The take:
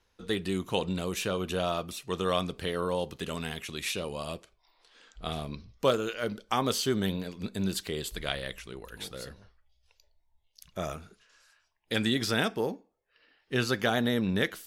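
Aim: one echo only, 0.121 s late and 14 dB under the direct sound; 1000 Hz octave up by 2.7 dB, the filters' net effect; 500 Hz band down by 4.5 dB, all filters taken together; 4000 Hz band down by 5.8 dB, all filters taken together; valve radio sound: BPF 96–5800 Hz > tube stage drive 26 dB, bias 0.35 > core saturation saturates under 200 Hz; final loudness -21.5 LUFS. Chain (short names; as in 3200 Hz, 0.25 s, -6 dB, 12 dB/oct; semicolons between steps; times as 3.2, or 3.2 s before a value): BPF 96–5800 Hz; bell 500 Hz -7 dB; bell 1000 Hz +6 dB; bell 4000 Hz -7 dB; echo 0.121 s -14 dB; tube stage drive 26 dB, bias 0.35; core saturation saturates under 200 Hz; gain +16 dB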